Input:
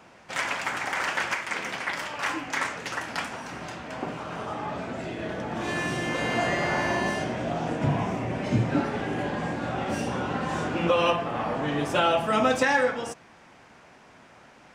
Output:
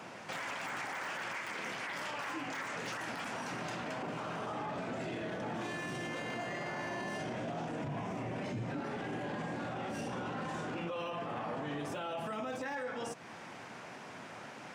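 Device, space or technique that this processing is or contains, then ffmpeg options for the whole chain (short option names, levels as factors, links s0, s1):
podcast mastering chain: -af "highpass=f=100:w=0.5412,highpass=f=100:w=1.3066,deesser=0.95,acompressor=threshold=0.00891:ratio=3,alimiter=level_in=3.98:limit=0.0631:level=0:latency=1:release=12,volume=0.251,volume=1.78" -ar 48000 -c:a libmp3lame -b:a 96k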